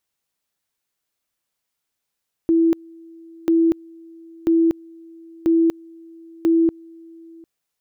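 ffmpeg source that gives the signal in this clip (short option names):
-f lavfi -i "aevalsrc='pow(10,(-12.5-27*gte(mod(t,0.99),0.24))/20)*sin(2*PI*330*t)':d=4.95:s=44100"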